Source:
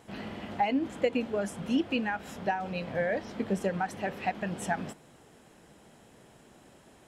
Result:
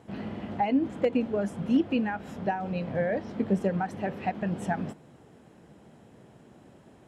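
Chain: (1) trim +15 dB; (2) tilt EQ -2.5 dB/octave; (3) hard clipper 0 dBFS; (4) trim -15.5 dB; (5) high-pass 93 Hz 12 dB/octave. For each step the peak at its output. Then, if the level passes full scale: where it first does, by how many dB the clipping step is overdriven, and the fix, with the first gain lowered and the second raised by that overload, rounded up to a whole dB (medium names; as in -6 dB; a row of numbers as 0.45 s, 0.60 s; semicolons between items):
+1.0 dBFS, +4.0 dBFS, 0.0 dBFS, -15.5 dBFS, -14.0 dBFS; step 1, 4.0 dB; step 1 +11 dB, step 4 -11.5 dB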